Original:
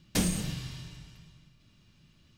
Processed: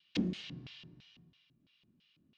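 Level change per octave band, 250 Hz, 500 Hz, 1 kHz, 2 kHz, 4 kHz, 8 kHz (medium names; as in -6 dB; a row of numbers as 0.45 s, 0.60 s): -4.5 dB, -6.5 dB, -15.5 dB, -8.0 dB, -7.0 dB, -26.5 dB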